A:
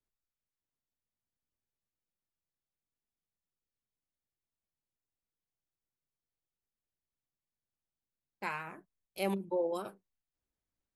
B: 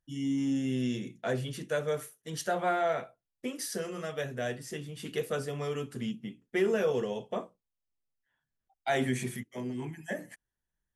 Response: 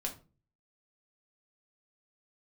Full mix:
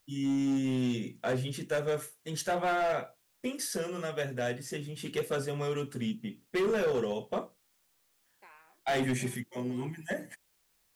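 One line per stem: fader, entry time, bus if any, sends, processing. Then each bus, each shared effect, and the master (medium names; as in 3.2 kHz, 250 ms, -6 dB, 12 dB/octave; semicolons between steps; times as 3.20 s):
-5.5 dB, 0.00 s, no send, high-pass 370 Hz 12 dB/octave; peak limiter -27 dBFS, peak gain reduction 5 dB; auto duck -12 dB, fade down 0.90 s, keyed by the second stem
+1.5 dB, 0.00 s, no send, overload inside the chain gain 26.5 dB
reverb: none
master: word length cut 12-bit, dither triangular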